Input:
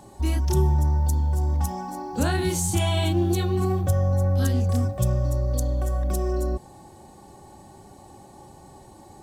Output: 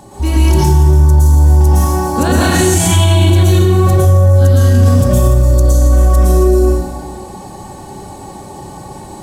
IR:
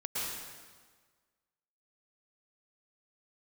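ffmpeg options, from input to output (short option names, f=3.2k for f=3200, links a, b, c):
-filter_complex "[1:a]atrim=start_sample=2205[a];[0:a][a]afir=irnorm=-1:irlink=0,alimiter=level_in=13.5dB:limit=-1dB:release=50:level=0:latency=1,volume=-1dB"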